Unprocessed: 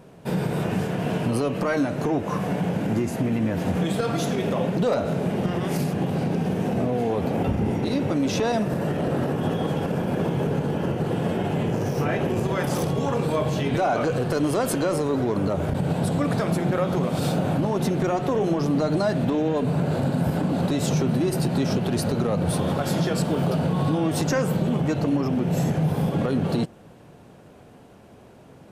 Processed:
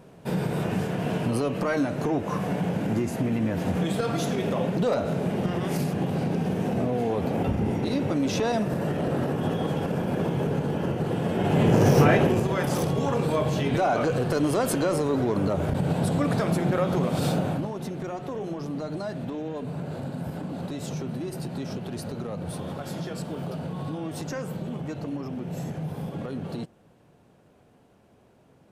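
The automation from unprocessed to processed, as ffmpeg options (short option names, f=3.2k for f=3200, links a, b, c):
-af "volume=8dB,afade=t=in:st=11.32:d=0.61:silence=0.316228,afade=t=out:st=11.93:d=0.52:silence=0.354813,afade=t=out:st=17.33:d=0.41:silence=0.354813"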